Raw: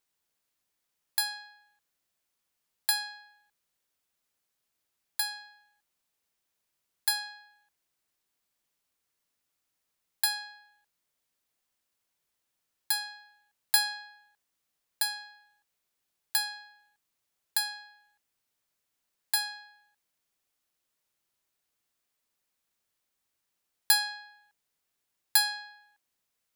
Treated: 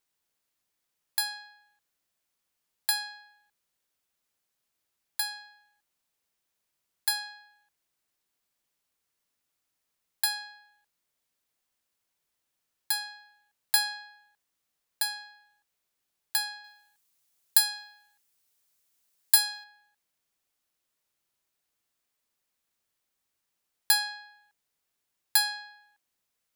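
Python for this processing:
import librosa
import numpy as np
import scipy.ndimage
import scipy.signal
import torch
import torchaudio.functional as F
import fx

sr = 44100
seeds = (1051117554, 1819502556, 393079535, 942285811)

y = fx.high_shelf(x, sr, hz=4000.0, db=10.0, at=(16.64, 19.64))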